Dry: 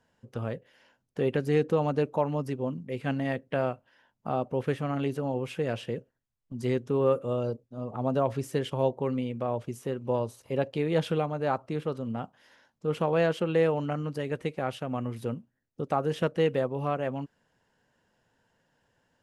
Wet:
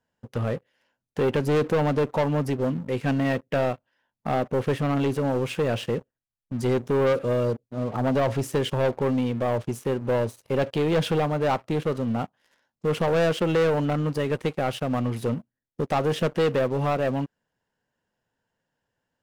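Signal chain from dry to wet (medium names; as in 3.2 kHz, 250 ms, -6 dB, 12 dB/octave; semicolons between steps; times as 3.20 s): waveshaping leveller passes 3; trim -3 dB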